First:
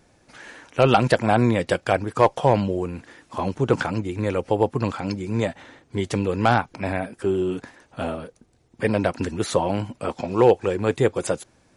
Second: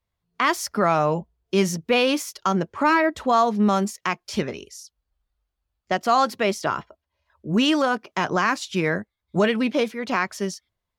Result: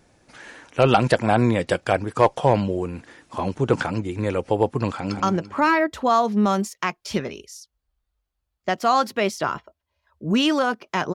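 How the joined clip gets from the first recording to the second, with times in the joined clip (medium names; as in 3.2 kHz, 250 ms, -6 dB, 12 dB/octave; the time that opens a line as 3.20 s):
first
4.93–5.20 s: echo throw 170 ms, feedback 35%, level -6 dB
5.20 s: go over to second from 2.43 s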